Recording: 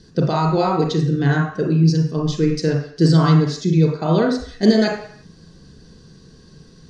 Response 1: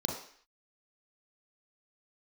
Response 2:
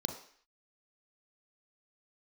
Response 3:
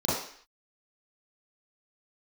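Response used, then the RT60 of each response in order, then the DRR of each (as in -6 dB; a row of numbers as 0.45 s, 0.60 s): 1; 0.55 s, 0.55 s, 0.55 s; -0.5 dB, 4.0 dB, -10.0 dB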